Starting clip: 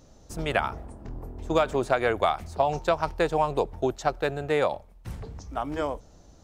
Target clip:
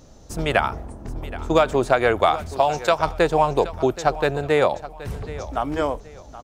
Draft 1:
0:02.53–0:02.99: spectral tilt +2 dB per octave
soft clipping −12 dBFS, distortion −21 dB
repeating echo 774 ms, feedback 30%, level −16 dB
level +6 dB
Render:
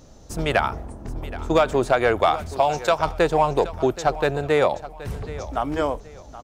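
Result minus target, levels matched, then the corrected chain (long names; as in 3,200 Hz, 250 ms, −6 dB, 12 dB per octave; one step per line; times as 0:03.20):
soft clipping: distortion +16 dB
0:02.53–0:02.99: spectral tilt +2 dB per octave
soft clipping −2.5 dBFS, distortion −37 dB
repeating echo 774 ms, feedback 30%, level −16 dB
level +6 dB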